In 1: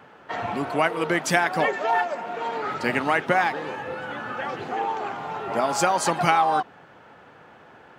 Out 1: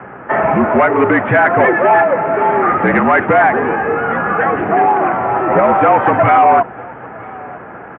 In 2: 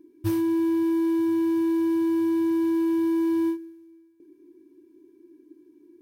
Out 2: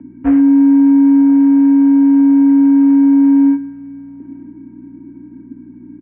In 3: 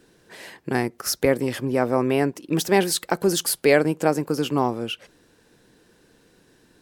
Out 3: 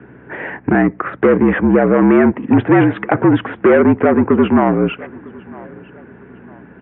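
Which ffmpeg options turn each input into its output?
-af "aeval=exprs='val(0)+0.00224*(sin(2*PI*60*n/s)+sin(2*PI*2*60*n/s)/2+sin(2*PI*3*60*n/s)/3+sin(2*PI*4*60*n/s)/4+sin(2*PI*5*60*n/s)/5)':c=same,aresample=8000,asoftclip=type=tanh:threshold=0.0891,aresample=44100,aecho=1:1:954|1908:0.0668|0.0254,highpass=f=170:t=q:w=0.5412,highpass=f=170:t=q:w=1.307,lowpass=f=2200:t=q:w=0.5176,lowpass=f=2200:t=q:w=0.7071,lowpass=f=2200:t=q:w=1.932,afreqshift=-52,alimiter=level_in=7.94:limit=0.891:release=50:level=0:latency=1,volume=0.891"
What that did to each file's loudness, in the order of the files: +12.0 LU, +14.0 LU, +9.0 LU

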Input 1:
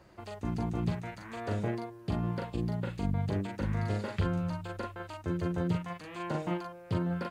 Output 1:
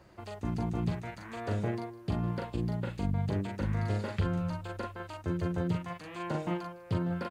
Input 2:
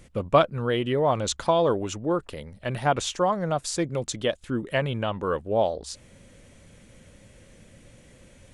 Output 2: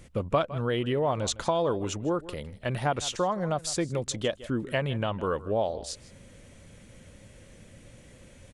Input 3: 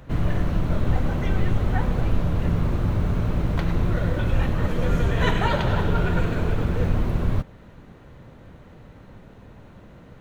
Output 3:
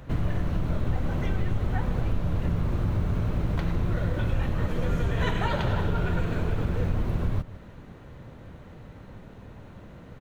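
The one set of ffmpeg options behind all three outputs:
-af "aecho=1:1:158:0.106,acompressor=threshold=0.0501:ratio=2,equalizer=f=92:w=1.5:g=2"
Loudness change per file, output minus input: 0.0 LU, -3.5 LU, -4.0 LU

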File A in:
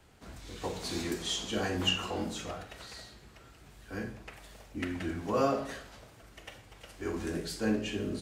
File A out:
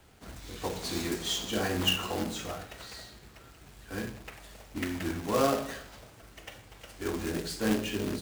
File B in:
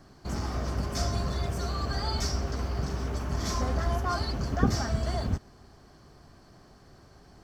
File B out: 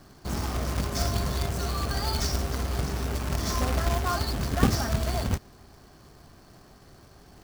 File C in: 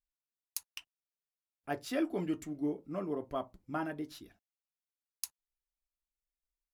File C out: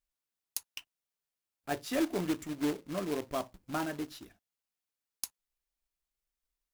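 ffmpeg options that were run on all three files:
-af "acrusher=bits=2:mode=log:mix=0:aa=0.000001,volume=1.19"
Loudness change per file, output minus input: +2.0 LU, +2.5 LU, +2.0 LU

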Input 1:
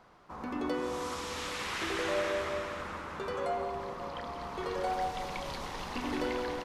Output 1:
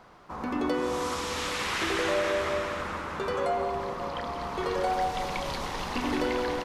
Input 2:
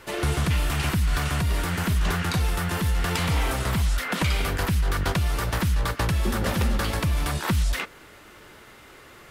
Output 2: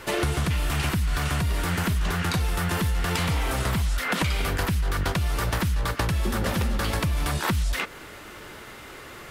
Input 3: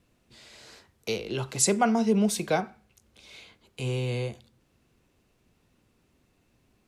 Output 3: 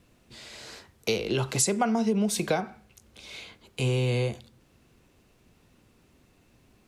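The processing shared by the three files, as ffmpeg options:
-af "acompressor=threshold=0.0398:ratio=6,volume=2"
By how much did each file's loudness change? +5.5 LU, -1.0 LU, 0.0 LU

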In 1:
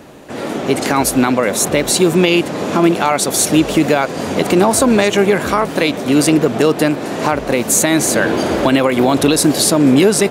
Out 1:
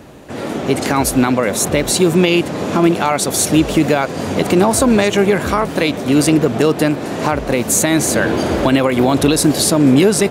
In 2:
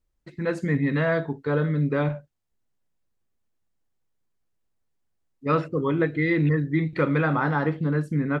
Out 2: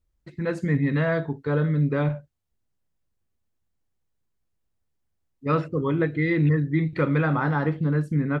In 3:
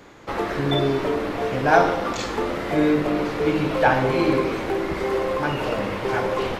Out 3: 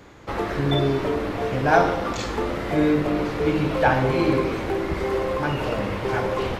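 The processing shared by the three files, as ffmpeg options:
-af "equalizer=f=66:t=o:w=2.1:g=8,volume=0.841"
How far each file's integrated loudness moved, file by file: -0.5 LU, +0.5 LU, -0.5 LU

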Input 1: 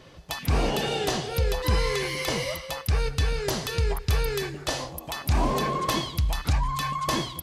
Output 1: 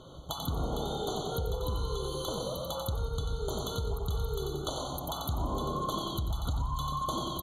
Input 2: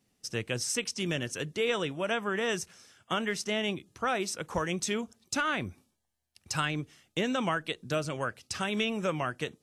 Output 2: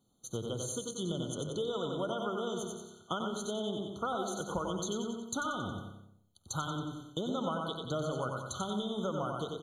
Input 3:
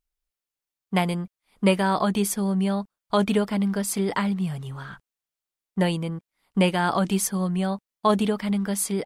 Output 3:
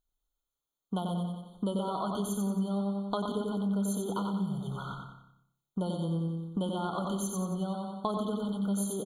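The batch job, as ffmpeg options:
-filter_complex "[0:a]asplit=2[s0][s1];[s1]aecho=0:1:91|182|273|364|455:0.562|0.242|0.104|0.0447|0.0192[s2];[s0][s2]amix=inputs=2:normalize=0,acompressor=threshold=0.0282:ratio=5,asplit=2[s3][s4];[s4]adelay=121,lowpass=f=1100:p=1,volume=0.447,asplit=2[s5][s6];[s6]adelay=121,lowpass=f=1100:p=1,volume=0.34,asplit=2[s7][s8];[s8]adelay=121,lowpass=f=1100:p=1,volume=0.34,asplit=2[s9][s10];[s10]adelay=121,lowpass=f=1100:p=1,volume=0.34[s11];[s5][s7][s9][s11]amix=inputs=4:normalize=0[s12];[s3][s12]amix=inputs=2:normalize=0,afftfilt=real='re*eq(mod(floor(b*sr/1024/1500),2),0)':imag='im*eq(mod(floor(b*sr/1024/1500),2),0)':win_size=1024:overlap=0.75"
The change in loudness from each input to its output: -7.0 LU, -4.5 LU, -8.5 LU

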